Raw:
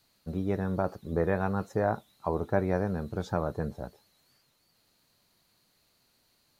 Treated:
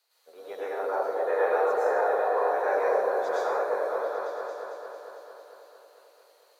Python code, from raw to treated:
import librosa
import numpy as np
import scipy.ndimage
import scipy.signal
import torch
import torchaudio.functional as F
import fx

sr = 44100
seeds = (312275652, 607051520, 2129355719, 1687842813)

p1 = scipy.signal.sosfilt(scipy.signal.ellip(4, 1.0, 80, 450.0, 'highpass', fs=sr, output='sos'), x)
p2 = p1 + fx.echo_opening(p1, sr, ms=225, hz=750, octaves=1, feedback_pct=70, wet_db=0, dry=0)
p3 = fx.rev_plate(p2, sr, seeds[0], rt60_s=0.98, hf_ratio=0.9, predelay_ms=90, drr_db=-8.5)
y = p3 * librosa.db_to_amplitude(-4.5)